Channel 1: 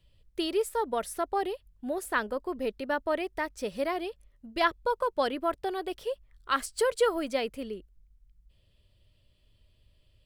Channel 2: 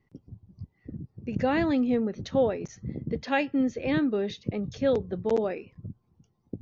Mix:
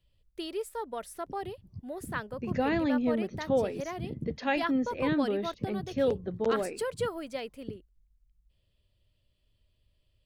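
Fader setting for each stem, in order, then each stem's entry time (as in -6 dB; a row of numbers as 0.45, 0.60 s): -7.0, -3.0 dB; 0.00, 1.15 s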